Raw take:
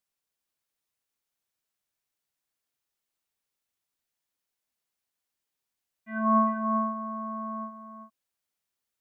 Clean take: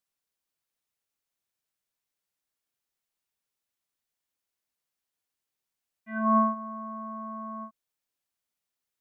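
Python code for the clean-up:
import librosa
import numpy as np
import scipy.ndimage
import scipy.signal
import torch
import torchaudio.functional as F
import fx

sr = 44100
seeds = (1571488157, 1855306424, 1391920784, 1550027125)

y = fx.fix_echo_inverse(x, sr, delay_ms=391, level_db=-7.0)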